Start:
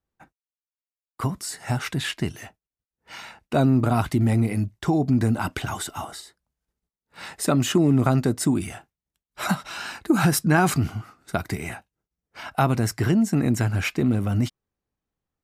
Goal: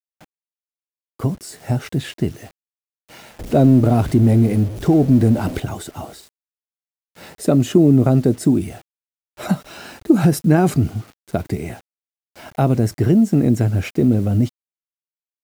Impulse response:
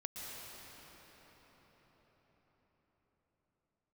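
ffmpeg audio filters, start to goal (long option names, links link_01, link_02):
-filter_complex "[0:a]asettb=1/sr,asplit=3[link_01][link_02][link_03];[link_01]atrim=end=3.394[link_04];[link_02]atrim=start=3.39:end=5.6,asetpts=PTS-STARTPTS,afade=type=in:duration=0.004:curve=qsin,afade=type=out:start_time=2.206:duration=0.004:curve=qsin,aeval=exprs='val(0)+0.5*0.0376*sgn(val(0))':channel_layout=same[link_05];[link_03]atrim=start=5.596[link_06];[link_04][link_05]acrossfade=duration=0.004:curve1=hsin:curve2=qsin[link_07];[link_07][link_06]acrossfade=duration=0.004:curve1=qsin:curve2=hsin,lowshelf=frequency=750:width_type=q:width=1.5:gain=9,acrusher=bits=6:mix=0:aa=0.000001,volume=-3.5dB"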